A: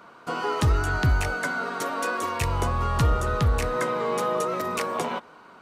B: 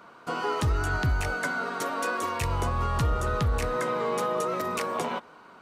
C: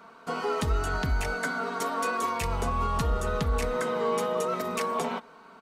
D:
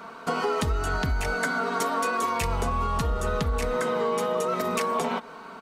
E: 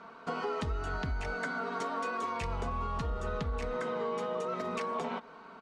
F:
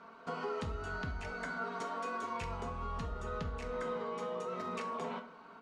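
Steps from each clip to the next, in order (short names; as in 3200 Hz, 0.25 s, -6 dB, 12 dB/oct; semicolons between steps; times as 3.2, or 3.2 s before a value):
limiter -17 dBFS, peak gain reduction 3 dB; gain -1.5 dB
comb 4.5 ms, depth 60%; gain -1.5 dB
compressor 4:1, threshold -33 dBFS, peak gain reduction 10 dB; gain +9 dB
air absorption 96 m; gain -8 dB
plate-style reverb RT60 0.56 s, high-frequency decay 0.75×, DRR 6 dB; gain -5 dB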